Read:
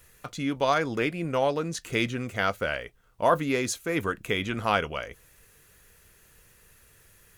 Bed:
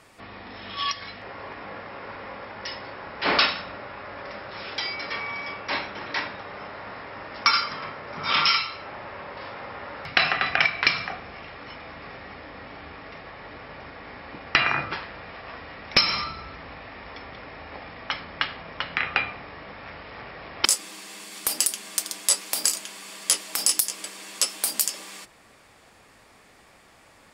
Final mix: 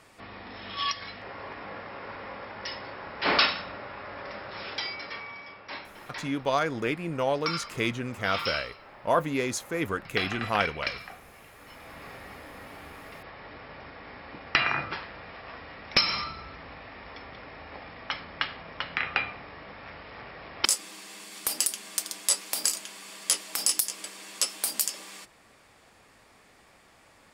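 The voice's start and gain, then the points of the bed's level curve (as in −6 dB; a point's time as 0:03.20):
5.85 s, −2.0 dB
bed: 0:04.69 −2 dB
0:05.50 −11.5 dB
0:11.53 −11.5 dB
0:11.99 −3.5 dB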